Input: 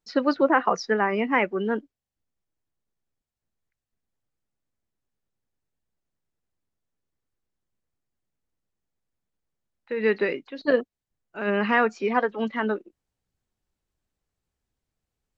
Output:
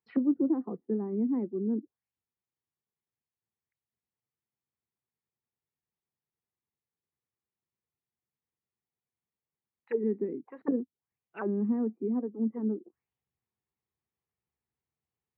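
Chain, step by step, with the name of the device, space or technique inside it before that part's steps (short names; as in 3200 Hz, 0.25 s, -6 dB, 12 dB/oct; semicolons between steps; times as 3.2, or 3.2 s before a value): 10–10.63 bell 2100 Hz +5.5 dB 0.7 oct; envelope filter bass rig (envelope low-pass 280–4700 Hz down, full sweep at -24 dBFS; speaker cabinet 84–2200 Hz, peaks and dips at 100 Hz -5 dB, 180 Hz -4 dB, 280 Hz -8 dB, 600 Hz -10 dB, 1500 Hz -8 dB); gain -4.5 dB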